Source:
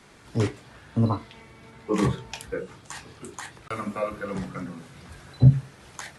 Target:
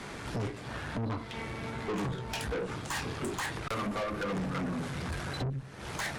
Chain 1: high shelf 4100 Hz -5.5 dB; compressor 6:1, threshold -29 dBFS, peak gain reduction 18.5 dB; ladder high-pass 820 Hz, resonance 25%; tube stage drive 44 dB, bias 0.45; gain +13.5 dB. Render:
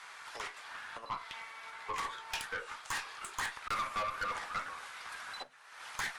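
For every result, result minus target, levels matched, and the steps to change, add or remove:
compressor: peak gain reduction -5 dB; 1000 Hz band +4.5 dB
change: compressor 6:1, threshold -35 dBFS, peak gain reduction 23.5 dB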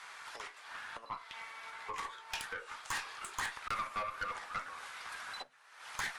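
1000 Hz band +4.0 dB
remove: ladder high-pass 820 Hz, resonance 25%

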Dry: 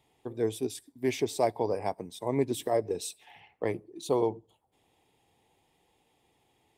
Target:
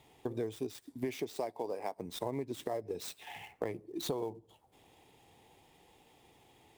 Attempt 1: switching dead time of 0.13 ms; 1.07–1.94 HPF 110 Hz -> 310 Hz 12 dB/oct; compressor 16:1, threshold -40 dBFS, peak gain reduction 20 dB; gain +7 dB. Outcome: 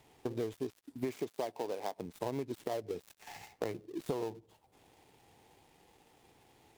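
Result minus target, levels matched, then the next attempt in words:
switching dead time: distortion +5 dB
switching dead time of 0.037 ms; 1.07–1.94 HPF 110 Hz -> 310 Hz 12 dB/oct; compressor 16:1, threshold -40 dBFS, peak gain reduction 20 dB; gain +7 dB

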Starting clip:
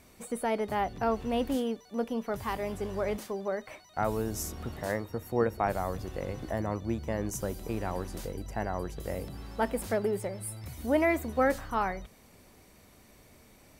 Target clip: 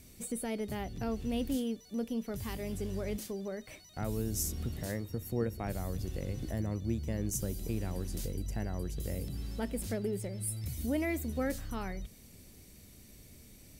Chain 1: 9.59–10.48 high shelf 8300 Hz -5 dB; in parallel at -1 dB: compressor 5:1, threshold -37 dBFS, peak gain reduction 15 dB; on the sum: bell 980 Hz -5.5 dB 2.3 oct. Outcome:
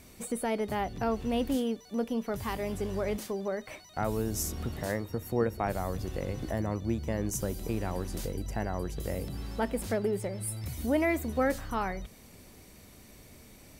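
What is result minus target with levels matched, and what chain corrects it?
1000 Hz band +6.5 dB
9.59–10.48 high shelf 8300 Hz -5 dB; in parallel at -1 dB: compressor 5:1, threshold -37 dBFS, peak gain reduction 15 dB; on the sum: bell 980 Hz -17.5 dB 2.3 oct

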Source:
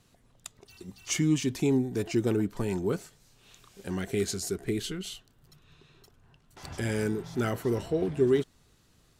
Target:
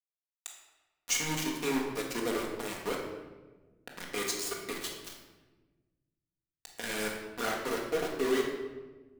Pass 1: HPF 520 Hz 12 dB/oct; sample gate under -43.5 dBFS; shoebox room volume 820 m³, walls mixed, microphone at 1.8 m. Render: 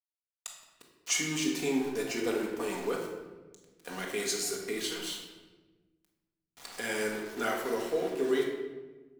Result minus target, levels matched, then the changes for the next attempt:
sample gate: distortion -13 dB
change: sample gate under -32 dBFS

